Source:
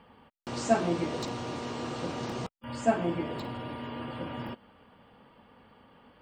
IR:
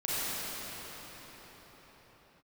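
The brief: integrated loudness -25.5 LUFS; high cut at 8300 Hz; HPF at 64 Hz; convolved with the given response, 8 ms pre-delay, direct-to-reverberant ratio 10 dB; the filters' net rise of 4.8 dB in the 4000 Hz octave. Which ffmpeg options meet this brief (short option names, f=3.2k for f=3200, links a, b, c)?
-filter_complex "[0:a]highpass=64,lowpass=8.3k,equalizer=f=4k:t=o:g=6.5,asplit=2[a][b];[1:a]atrim=start_sample=2205,adelay=8[c];[b][c]afir=irnorm=-1:irlink=0,volume=-20dB[d];[a][d]amix=inputs=2:normalize=0,volume=7dB"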